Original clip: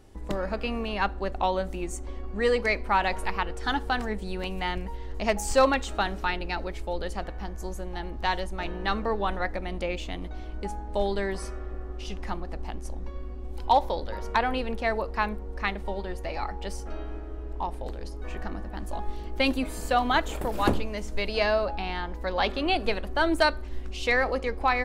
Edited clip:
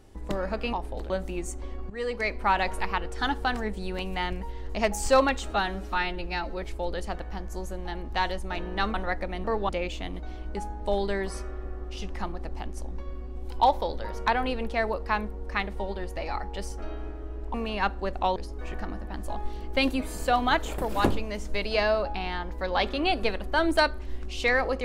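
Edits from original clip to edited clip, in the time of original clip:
0:00.73–0:01.55: swap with 0:17.62–0:17.99
0:02.35–0:02.91: fade in, from −13.5 dB
0:05.96–0:06.70: time-stretch 1.5×
0:09.02–0:09.27: move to 0:09.77

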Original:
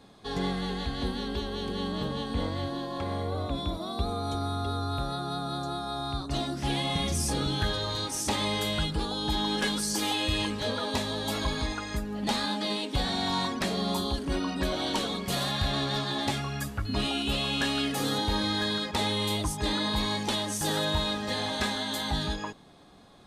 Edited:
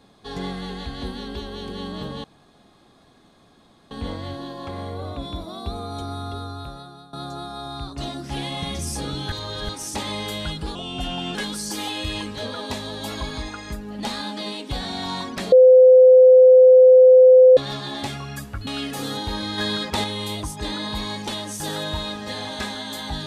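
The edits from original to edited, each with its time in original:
0:02.24: splice in room tone 1.67 s
0:04.62–0:05.46: fade out, to −18 dB
0:07.65–0:08.02: reverse
0:09.08–0:09.59: play speed 85%
0:13.76–0:15.81: beep over 512 Hz −6.5 dBFS
0:16.91–0:17.68: remove
0:18.59–0:19.05: clip gain +4.5 dB

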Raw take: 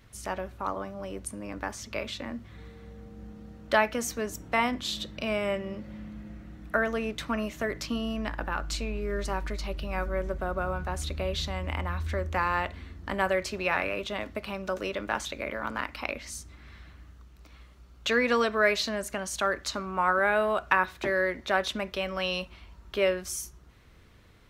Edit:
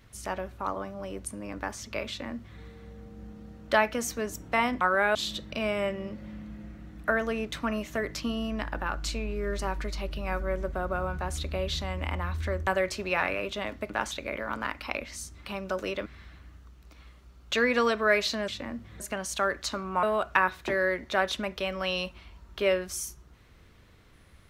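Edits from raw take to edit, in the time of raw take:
0:02.08–0:02.60: duplicate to 0:19.02
0:12.33–0:13.21: remove
0:14.44–0:15.04: move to 0:16.60
0:20.05–0:20.39: move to 0:04.81

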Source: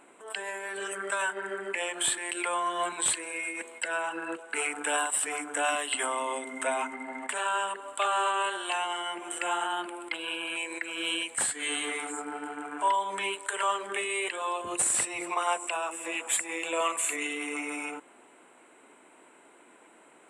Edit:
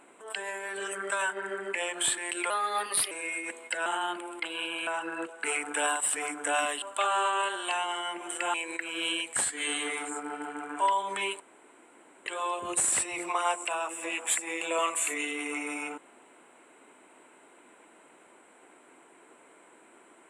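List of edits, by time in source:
0:02.50–0:03.22: play speed 118%
0:05.92–0:07.83: remove
0:09.55–0:10.56: move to 0:03.97
0:13.42–0:14.28: fill with room tone

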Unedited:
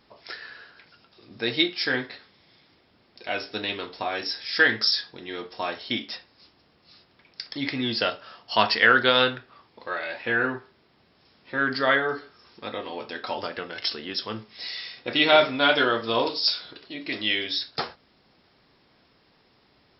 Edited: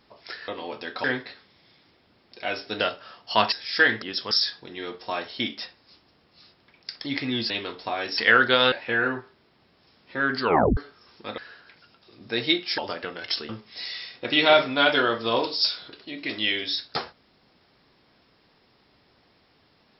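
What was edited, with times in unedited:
0:00.48–0:01.88: swap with 0:12.76–0:13.32
0:03.64–0:04.32: swap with 0:08.01–0:08.73
0:09.27–0:10.10: remove
0:11.78: tape stop 0.37 s
0:14.03–0:14.32: move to 0:04.82

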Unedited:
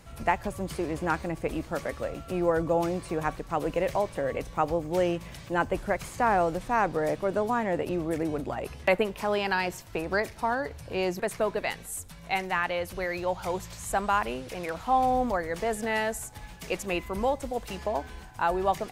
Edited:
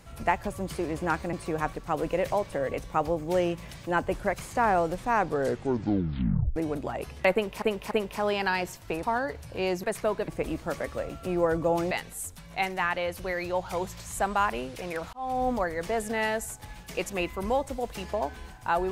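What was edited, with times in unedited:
0:01.33–0:02.96: move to 0:11.64
0:06.90: tape stop 1.29 s
0:08.96–0:09.25: repeat, 3 plays
0:10.08–0:10.39: remove
0:14.86–0:15.23: fade in

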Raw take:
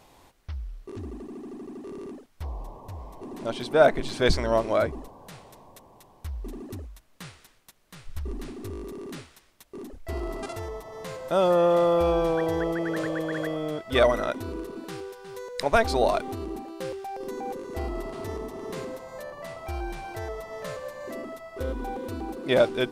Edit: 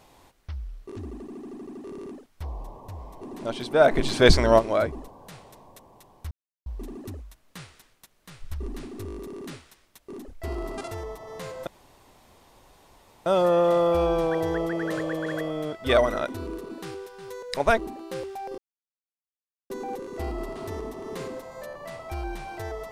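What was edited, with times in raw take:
0:03.91–0:04.59: clip gain +6 dB
0:06.31: splice in silence 0.35 s
0:11.32: splice in room tone 1.59 s
0:15.84–0:16.47: remove
0:17.27: splice in silence 1.12 s

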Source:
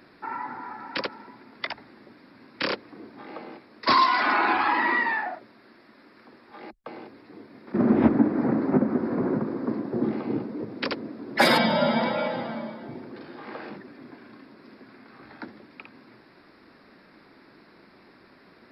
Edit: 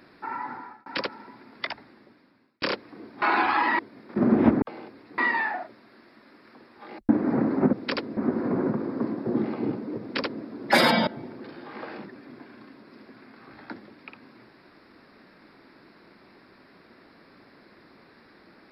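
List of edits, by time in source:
0:00.53–0:00.86: fade out
0:01.67–0:02.62: fade out
0:03.22–0:04.33: remove
0:04.90–0:06.81: swap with 0:07.37–0:08.20
0:10.67–0:11.11: duplicate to 0:08.84
0:11.74–0:12.79: remove

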